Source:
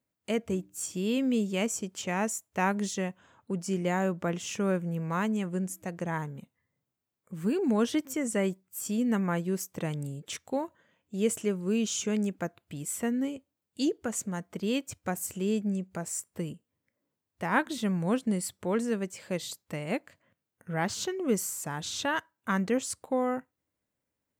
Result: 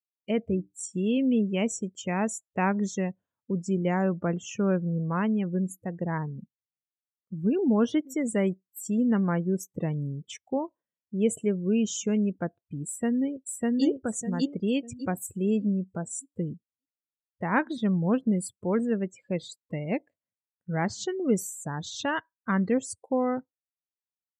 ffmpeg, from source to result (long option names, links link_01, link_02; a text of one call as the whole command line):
ffmpeg -i in.wav -filter_complex "[0:a]asplit=2[link_01][link_02];[link_02]afade=type=in:start_time=12.86:duration=0.01,afade=type=out:start_time=13.85:duration=0.01,aecho=0:1:600|1200|1800|2400|3000:1|0.35|0.1225|0.042875|0.0150062[link_03];[link_01][link_03]amix=inputs=2:normalize=0,afftdn=noise_reduction=33:noise_floor=-38,lowshelf=frequency=380:gain=5" out.wav